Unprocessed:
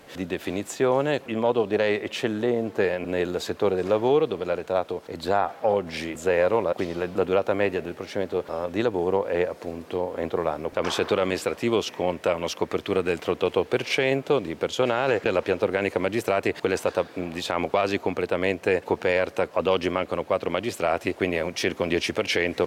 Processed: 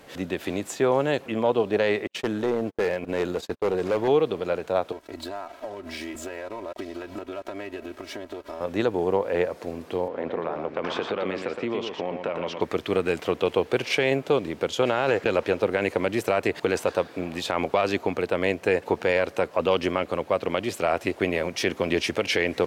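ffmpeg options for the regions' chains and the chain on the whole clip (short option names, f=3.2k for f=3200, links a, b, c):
-filter_complex "[0:a]asettb=1/sr,asplit=3[a][b][c];[a]atrim=end=2.074[d];[b]atrim=start=2.07:end=4.08,asetpts=PTS-STARTPTS,afade=t=in:d=0.004:c=qsin,afade=t=out:st=2.006:d=0.004:c=qsin,agate=range=-43dB:threshold=-32dB:ratio=16:release=100:detection=peak,asoftclip=type=hard:threshold=-19dB[e];[c]atrim=start=4.076[f];[d][e]acrossfade=d=0.004:c1=hsin:c2=qsin[g];[g][f]acrossfade=d=0.004:c1=qsin:c2=hsin,asettb=1/sr,asplit=3[h][i][j];[h]atrim=end=4.924[k];[i]atrim=start=4.92:end=8.61,asetpts=PTS-STARTPTS,afade=t=in:d=0.004:c=qsin,afade=t=out:st=3.686:d=0.004:c=qsin,acompressor=threshold=-32dB:ratio=5:attack=3.2:release=140:knee=1:detection=peak,aeval=exprs='sgn(val(0))*max(abs(val(0))-0.00335,0)':c=same,aecho=1:1:3.1:0.87,atrim=end_sample=162729[l];[j]atrim=start=8.606[m];[k][l]acrossfade=d=0.004:c1=hsin:c2=qsin[n];[n][m]acrossfade=d=0.004:c1=qsin:c2=hsin,asettb=1/sr,asplit=3[o][p][q];[o]atrim=end=10.084[r];[p]atrim=start=10.08:end=12.61,asetpts=PTS-STARTPTS,afade=t=in:d=0.004:c=qsin,afade=t=out:st=2.526:d=0.004:c=qsin,acompressor=threshold=-23dB:ratio=6:attack=3.2:release=140:knee=1:detection=peak,highpass=130,lowpass=3k,aecho=1:1:117:0.501,atrim=end_sample=111573[s];[q]atrim=start=12.606[t];[r][s]acrossfade=d=0.004:c1=hsin:c2=qsin[u];[u][t]acrossfade=d=0.004:c1=qsin:c2=hsin"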